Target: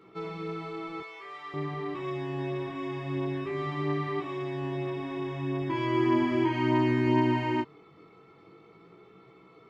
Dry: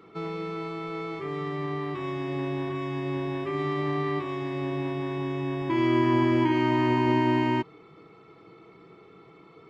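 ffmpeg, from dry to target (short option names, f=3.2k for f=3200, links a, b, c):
-filter_complex "[0:a]asettb=1/sr,asplit=3[a][b][c];[a]atrim=end=1.004[d];[b]atrim=start=1:end=1.54,asetpts=PTS-STARTPTS,afade=t=in:d=0.004:c=qsin,afade=t=out:st=0.536:d=0.004:c=qsin,highpass=880[e];[c]atrim=start=1.536[f];[d][e]acrossfade=d=0.004:c1=hsin:c2=qsin[g];[g][f]acrossfade=d=0.004:c1=qsin:c2=hsin,flanger=delay=15.5:depth=6.9:speed=0.43"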